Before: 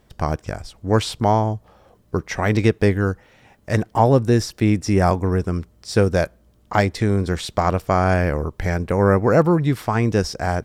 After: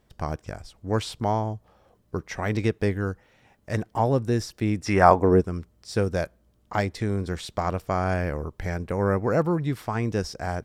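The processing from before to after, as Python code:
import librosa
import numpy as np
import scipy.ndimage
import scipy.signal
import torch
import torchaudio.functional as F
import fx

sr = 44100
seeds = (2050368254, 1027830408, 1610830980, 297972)

y = fx.peak_eq(x, sr, hz=fx.line((4.85, 2100.0), (5.4, 320.0)), db=13.5, octaves=2.5, at=(4.85, 5.4), fade=0.02)
y = y * librosa.db_to_amplitude(-7.5)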